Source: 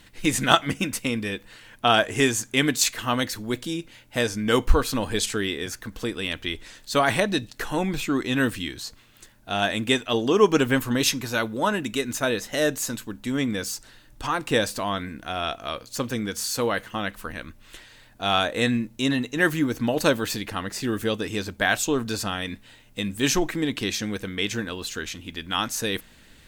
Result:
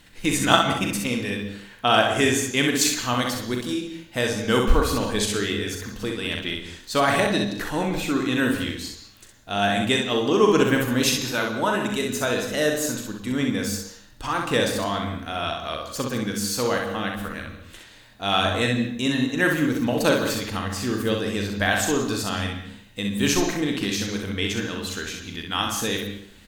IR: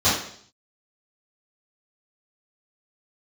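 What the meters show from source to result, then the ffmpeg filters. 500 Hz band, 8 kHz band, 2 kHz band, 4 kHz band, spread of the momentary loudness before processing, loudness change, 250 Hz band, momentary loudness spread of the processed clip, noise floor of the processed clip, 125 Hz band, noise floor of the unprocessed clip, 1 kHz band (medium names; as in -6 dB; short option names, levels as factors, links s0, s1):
+1.5 dB, +1.0 dB, +1.0 dB, +1.5 dB, 11 LU, +1.5 dB, +2.0 dB, 11 LU, -48 dBFS, +2.0 dB, -52 dBFS, +1.5 dB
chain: -filter_complex "[0:a]aecho=1:1:40|64:0.398|0.596,asplit=2[s0][s1];[1:a]atrim=start_sample=2205,adelay=102[s2];[s1][s2]afir=irnorm=-1:irlink=0,volume=0.0422[s3];[s0][s3]amix=inputs=2:normalize=0,volume=0.891"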